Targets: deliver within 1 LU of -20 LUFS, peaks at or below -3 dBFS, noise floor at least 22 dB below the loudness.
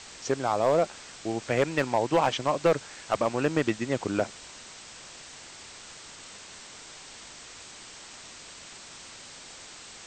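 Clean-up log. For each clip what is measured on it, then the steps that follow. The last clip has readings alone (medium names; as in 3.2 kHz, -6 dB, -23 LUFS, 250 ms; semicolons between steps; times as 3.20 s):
clipped samples 0.3%; clipping level -15.0 dBFS; noise floor -47 dBFS; noise floor target -50 dBFS; loudness -27.5 LUFS; peak level -15.0 dBFS; loudness target -20.0 LUFS
-> clip repair -15 dBFS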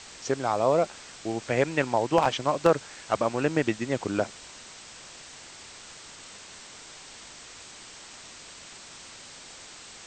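clipped samples 0.0%; noise floor -47 dBFS; noise floor target -49 dBFS
-> noise reduction 6 dB, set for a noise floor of -47 dBFS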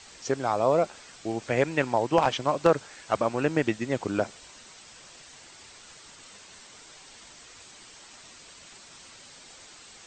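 noise floor -50 dBFS; loudness -27.0 LUFS; peak level -6.0 dBFS; loudness target -20.0 LUFS
-> trim +7 dB; peak limiter -3 dBFS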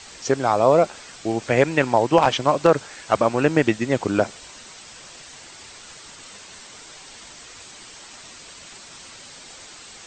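loudness -20.0 LUFS; peak level -3.0 dBFS; noise floor -43 dBFS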